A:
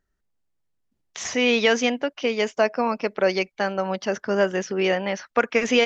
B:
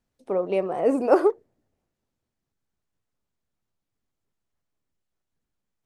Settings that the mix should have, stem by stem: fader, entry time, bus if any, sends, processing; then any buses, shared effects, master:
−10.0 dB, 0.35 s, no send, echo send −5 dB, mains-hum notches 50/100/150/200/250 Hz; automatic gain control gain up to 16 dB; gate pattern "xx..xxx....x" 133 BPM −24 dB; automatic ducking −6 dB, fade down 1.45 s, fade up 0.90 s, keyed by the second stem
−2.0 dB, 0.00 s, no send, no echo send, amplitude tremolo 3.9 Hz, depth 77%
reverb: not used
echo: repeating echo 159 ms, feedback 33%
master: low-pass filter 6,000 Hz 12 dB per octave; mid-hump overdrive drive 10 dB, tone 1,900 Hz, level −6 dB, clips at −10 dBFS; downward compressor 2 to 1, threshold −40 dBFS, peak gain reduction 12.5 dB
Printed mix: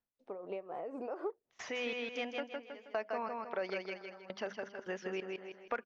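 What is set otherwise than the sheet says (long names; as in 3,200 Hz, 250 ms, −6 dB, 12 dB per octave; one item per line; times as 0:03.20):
stem A: missing automatic gain control gain up to 16 dB
stem B −2.0 dB → −12.0 dB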